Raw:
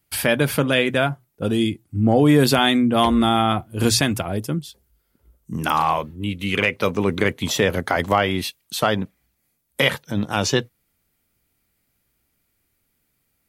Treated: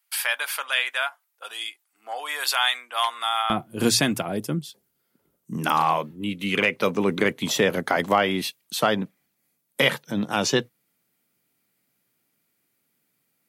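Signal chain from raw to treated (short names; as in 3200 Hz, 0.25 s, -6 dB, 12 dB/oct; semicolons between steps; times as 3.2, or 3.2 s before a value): HPF 900 Hz 24 dB/oct, from 3.5 s 140 Hz; gain -1.5 dB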